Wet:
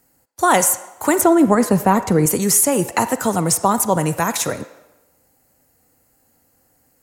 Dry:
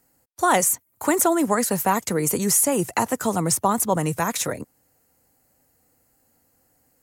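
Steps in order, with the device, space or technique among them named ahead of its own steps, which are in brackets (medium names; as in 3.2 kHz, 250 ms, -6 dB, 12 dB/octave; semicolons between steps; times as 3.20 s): 1.21–2.26 s: tilt EQ -2.5 dB/octave; filtered reverb send (on a send: high-pass 480 Hz 12 dB/octave + low-pass 5.9 kHz 12 dB/octave + reverberation RT60 1.0 s, pre-delay 34 ms, DRR 11.5 dB); on the sum: trim +4 dB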